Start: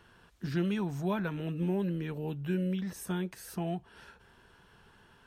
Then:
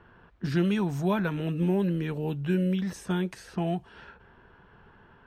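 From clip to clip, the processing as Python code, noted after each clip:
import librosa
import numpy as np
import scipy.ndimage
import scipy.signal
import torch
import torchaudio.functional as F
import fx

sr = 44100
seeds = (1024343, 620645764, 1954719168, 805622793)

y = fx.env_lowpass(x, sr, base_hz=1600.0, full_db=-31.5)
y = F.gain(torch.from_numpy(y), 5.5).numpy()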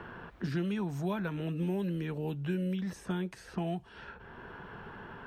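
y = fx.band_squash(x, sr, depth_pct=70)
y = F.gain(torch.from_numpy(y), -6.5).numpy()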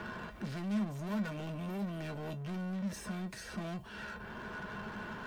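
y = fx.law_mismatch(x, sr, coded='mu')
y = 10.0 ** (-37.5 / 20.0) * np.tanh(y / 10.0 ** (-37.5 / 20.0))
y = fx.comb_fb(y, sr, f0_hz=210.0, decay_s=0.15, harmonics='odd', damping=0.0, mix_pct=80)
y = F.gain(torch.from_numpy(y), 10.0).numpy()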